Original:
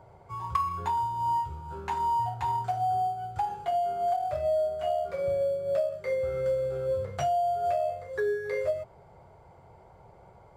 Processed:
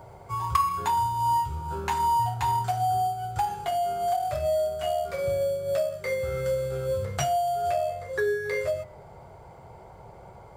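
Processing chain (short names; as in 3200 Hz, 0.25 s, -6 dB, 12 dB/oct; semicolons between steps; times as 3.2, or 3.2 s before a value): high shelf 6500 Hz +10.5 dB, from 7.62 s +5.5 dB; de-hum 86.93 Hz, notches 28; dynamic EQ 560 Hz, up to -6 dB, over -39 dBFS, Q 0.75; gain +7 dB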